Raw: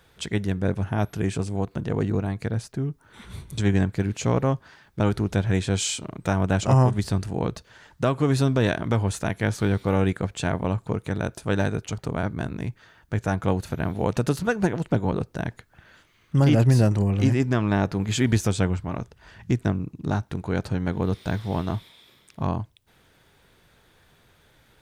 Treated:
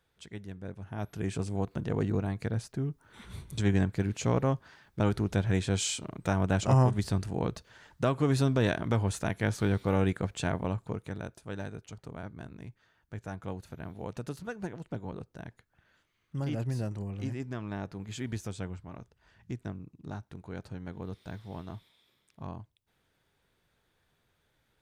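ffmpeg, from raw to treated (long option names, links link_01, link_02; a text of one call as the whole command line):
ffmpeg -i in.wav -af "volume=-5dB,afade=type=in:start_time=0.82:duration=0.68:silence=0.251189,afade=type=out:start_time=10.41:duration=1.01:silence=0.316228" out.wav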